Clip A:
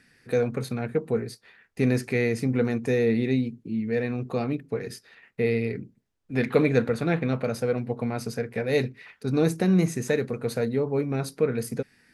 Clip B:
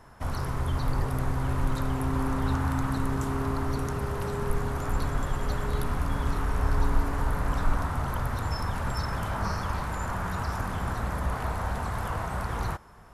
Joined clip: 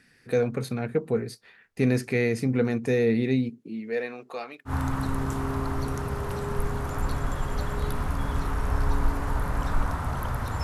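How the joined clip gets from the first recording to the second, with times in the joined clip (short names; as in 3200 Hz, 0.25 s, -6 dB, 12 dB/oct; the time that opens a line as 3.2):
clip A
3.49–4.73 HPF 200 Hz -> 1200 Hz
4.69 switch to clip B from 2.6 s, crossfade 0.08 s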